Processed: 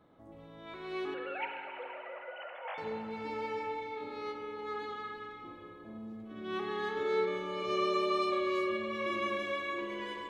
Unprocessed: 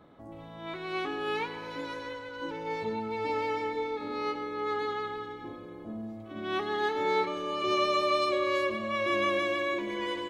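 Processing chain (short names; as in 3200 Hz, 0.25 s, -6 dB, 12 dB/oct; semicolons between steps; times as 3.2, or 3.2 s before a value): 1.14–2.78 sine-wave speech; spring tank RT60 2.8 s, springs 43/59 ms, chirp 20 ms, DRR 2.5 dB; gain -8 dB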